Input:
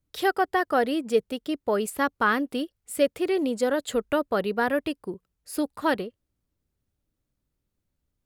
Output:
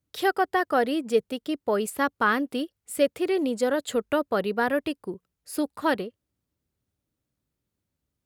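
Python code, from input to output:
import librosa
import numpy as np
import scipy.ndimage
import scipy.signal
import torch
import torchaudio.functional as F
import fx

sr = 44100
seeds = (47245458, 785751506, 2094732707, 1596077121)

y = scipy.signal.sosfilt(scipy.signal.butter(2, 71.0, 'highpass', fs=sr, output='sos'), x)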